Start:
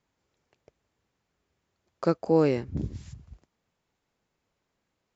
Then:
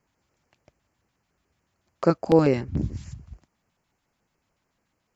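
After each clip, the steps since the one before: LFO notch square 6.9 Hz 440–3600 Hz; trim +5 dB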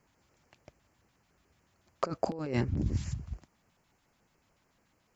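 compressor with a negative ratio -29 dBFS, ratio -1; trim -3 dB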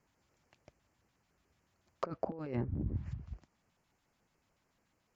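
low-pass that closes with the level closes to 1.1 kHz, closed at -27 dBFS; trim -5.5 dB

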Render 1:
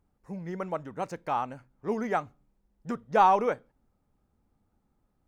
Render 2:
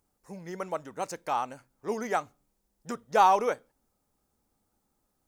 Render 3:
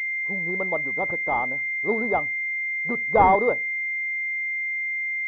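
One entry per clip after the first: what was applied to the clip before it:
tone controls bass -8 dB, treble +12 dB
class-D stage that switches slowly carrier 2.1 kHz; trim +6.5 dB

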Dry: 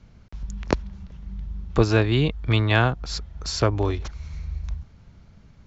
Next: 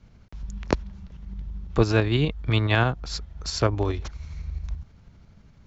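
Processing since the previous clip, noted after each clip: tremolo saw up 12 Hz, depth 40%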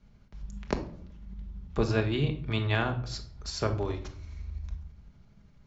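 simulated room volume 850 m³, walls furnished, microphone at 1.3 m; trim -7.5 dB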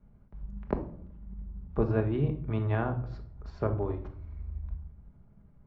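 low-pass 1.1 kHz 12 dB/octave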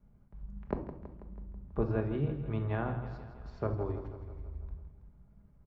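feedback delay 163 ms, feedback 59%, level -11 dB; trim -4 dB

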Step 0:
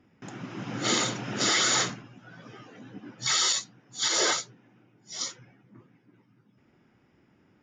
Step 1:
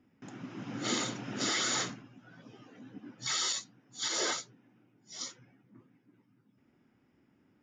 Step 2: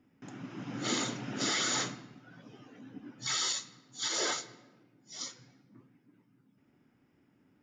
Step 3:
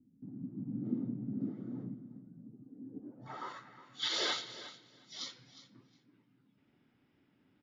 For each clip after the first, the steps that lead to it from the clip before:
peaking EQ 260 Hz +6 dB 0.49 oct; time-frequency box 2.42–2.62 s, 1.1–2.4 kHz -7 dB; trim -7.5 dB
reverberation RT60 1.2 s, pre-delay 7 ms, DRR 12.5 dB
low-pass sweep 230 Hz -> 3.8 kHz, 2.67–4.12 s; feedback delay 360 ms, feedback 16%, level -15 dB; trim -3.5 dB

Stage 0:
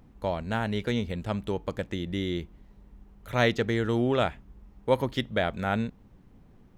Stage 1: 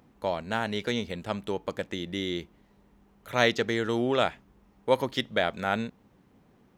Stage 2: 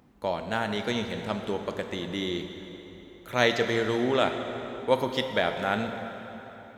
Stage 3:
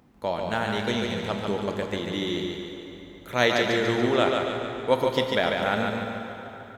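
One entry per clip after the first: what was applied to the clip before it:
high-pass 290 Hz 6 dB/octave; dynamic bell 5.3 kHz, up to +5 dB, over -50 dBFS, Q 1.3; trim +1.5 dB
plate-style reverb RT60 3.8 s, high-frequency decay 0.75×, DRR 5.5 dB
feedback delay 144 ms, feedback 50%, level -4 dB; trim +1 dB

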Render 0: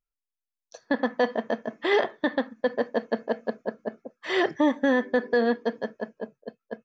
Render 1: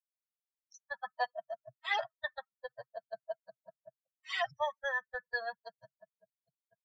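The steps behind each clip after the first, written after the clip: expander on every frequency bin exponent 3; elliptic band-stop 130–660 Hz, stop band 60 dB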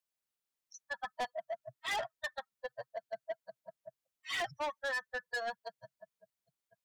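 saturation -36.5 dBFS, distortion -7 dB; trim +4.5 dB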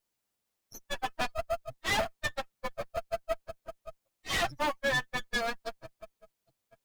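comb filter that takes the minimum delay 9 ms; in parallel at -11 dB: sample-rate reducer 1.9 kHz, jitter 0%; on the sum: trim +7.5 dB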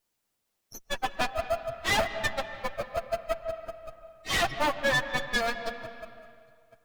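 reverberation RT60 2.0 s, pre-delay 110 ms, DRR 9.5 dB; trim +3.5 dB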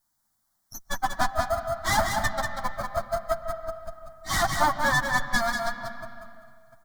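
static phaser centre 1.1 kHz, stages 4; delay 189 ms -5 dB; trim +6 dB

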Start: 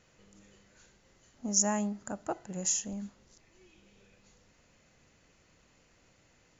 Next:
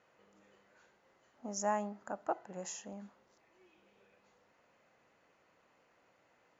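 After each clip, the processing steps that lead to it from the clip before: band-pass filter 890 Hz, Q 0.87; trim +1.5 dB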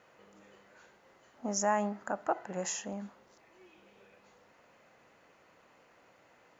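dynamic bell 1.8 kHz, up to +4 dB, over -57 dBFS, Q 1.1; in parallel at +2.5 dB: peak limiter -30.5 dBFS, peak gain reduction 11 dB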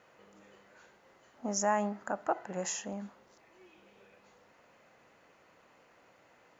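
no audible change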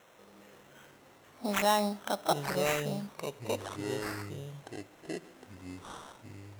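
pre-echo 31 ms -16 dB; sample-rate reducer 4.7 kHz, jitter 0%; ever faster or slower copies 260 ms, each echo -6 st, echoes 2, each echo -6 dB; trim +2.5 dB

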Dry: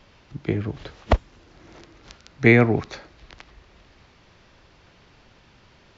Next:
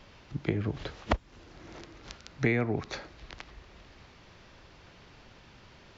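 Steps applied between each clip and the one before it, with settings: compression 5:1, threshold -25 dBFS, peak gain reduction 14 dB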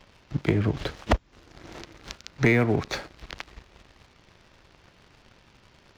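waveshaping leveller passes 2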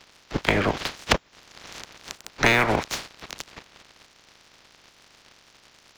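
spectral peaks clipped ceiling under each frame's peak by 23 dB; trim +1.5 dB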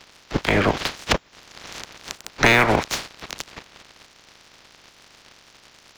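loudness maximiser +5.5 dB; trim -1.5 dB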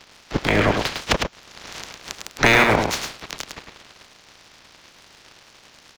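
delay 105 ms -5 dB

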